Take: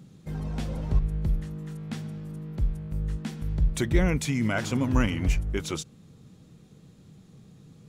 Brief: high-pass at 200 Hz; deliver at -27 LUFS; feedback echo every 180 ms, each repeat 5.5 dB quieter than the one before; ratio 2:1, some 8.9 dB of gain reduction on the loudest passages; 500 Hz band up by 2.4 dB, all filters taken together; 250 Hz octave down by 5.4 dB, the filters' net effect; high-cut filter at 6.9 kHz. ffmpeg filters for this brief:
-af "highpass=200,lowpass=6900,equalizer=f=250:t=o:g=-6,equalizer=f=500:t=o:g=5.5,acompressor=threshold=0.0126:ratio=2,aecho=1:1:180|360|540|720|900|1080|1260:0.531|0.281|0.149|0.079|0.0419|0.0222|0.0118,volume=3.55"

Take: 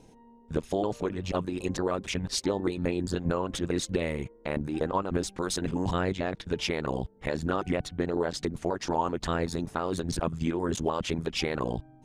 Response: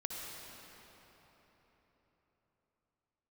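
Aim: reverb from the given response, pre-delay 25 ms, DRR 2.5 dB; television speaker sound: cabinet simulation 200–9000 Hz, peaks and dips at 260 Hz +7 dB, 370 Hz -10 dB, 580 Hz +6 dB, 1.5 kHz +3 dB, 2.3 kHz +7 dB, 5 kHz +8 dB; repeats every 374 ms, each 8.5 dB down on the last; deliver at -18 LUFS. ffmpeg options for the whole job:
-filter_complex "[0:a]aecho=1:1:374|748|1122|1496:0.376|0.143|0.0543|0.0206,asplit=2[s0][s1];[1:a]atrim=start_sample=2205,adelay=25[s2];[s1][s2]afir=irnorm=-1:irlink=0,volume=0.668[s3];[s0][s3]amix=inputs=2:normalize=0,highpass=f=200:w=0.5412,highpass=f=200:w=1.3066,equalizer=f=260:t=q:w=4:g=7,equalizer=f=370:t=q:w=4:g=-10,equalizer=f=580:t=q:w=4:g=6,equalizer=f=1500:t=q:w=4:g=3,equalizer=f=2300:t=q:w=4:g=7,equalizer=f=5000:t=q:w=4:g=8,lowpass=f=9000:w=0.5412,lowpass=f=9000:w=1.3066,volume=2.82"

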